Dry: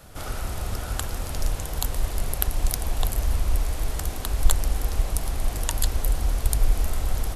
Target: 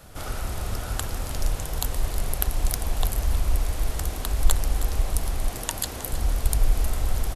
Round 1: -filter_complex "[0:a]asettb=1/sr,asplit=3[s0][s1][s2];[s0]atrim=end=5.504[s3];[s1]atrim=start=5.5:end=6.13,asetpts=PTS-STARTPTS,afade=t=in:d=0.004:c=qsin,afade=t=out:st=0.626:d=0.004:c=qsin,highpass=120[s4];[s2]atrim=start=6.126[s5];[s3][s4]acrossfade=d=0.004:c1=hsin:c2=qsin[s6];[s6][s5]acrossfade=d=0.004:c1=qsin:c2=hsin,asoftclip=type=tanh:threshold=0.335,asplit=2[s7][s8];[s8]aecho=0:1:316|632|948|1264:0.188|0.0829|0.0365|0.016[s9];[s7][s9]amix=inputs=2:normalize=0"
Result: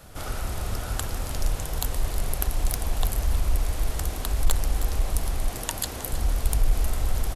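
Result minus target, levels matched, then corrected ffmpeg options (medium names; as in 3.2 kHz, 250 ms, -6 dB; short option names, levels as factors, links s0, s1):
saturation: distortion +12 dB
-filter_complex "[0:a]asettb=1/sr,asplit=3[s0][s1][s2];[s0]atrim=end=5.504[s3];[s1]atrim=start=5.5:end=6.13,asetpts=PTS-STARTPTS,afade=t=in:d=0.004:c=qsin,afade=t=out:st=0.626:d=0.004:c=qsin,highpass=120[s4];[s2]atrim=start=6.126[s5];[s3][s4]acrossfade=d=0.004:c1=hsin:c2=qsin[s6];[s6][s5]acrossfade=d=0.004:c1=qsin:c2=hsin,asoftclip=type=tanh:threshold=0.891,asplit=2[s7][s8];[s8]aecho=0:1:316|632|948|1264:0.188|0.0829|0.0365|0.016[s9];[s7][s9]amix=inputs=2:normalize=0"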